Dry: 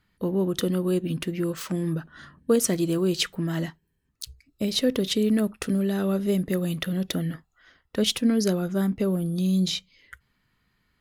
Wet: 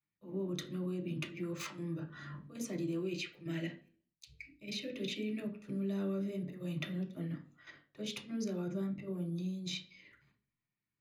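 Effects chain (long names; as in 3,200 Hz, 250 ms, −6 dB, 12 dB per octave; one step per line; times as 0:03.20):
notch filter 470 Hz, Q 12
downward expander −55 dBFS
0:02.99–0:05.42: graphic EQ with 15 bands 100 Hz −11 dB, 1,000 Hz −10 dB, 2,500 Hz +9 dB
downward compressor 8 to 1, threshold −37 dBFS, peak gain reduction 20 dB
volume swells 127 ms
output level in coarse steps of 11 dB
convolution reverb RT60 0.40 s, pre-delay 3 ms, DRR 0 dB
level −4 dB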